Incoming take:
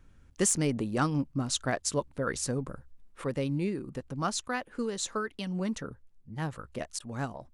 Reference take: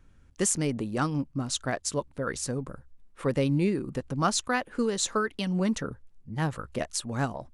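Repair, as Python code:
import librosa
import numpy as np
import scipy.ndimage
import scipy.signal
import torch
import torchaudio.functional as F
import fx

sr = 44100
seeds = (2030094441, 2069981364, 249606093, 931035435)

y = fx.fix_declip(x, sr, threshold_db=-15.5)
y = fx.fix_interpolate(y, sr, at_s=(6.99,), length_ms=10.0)
y = fx.gain(y, sr, db=fx.steps((0.0, 0.0), (3.24, 5.5)))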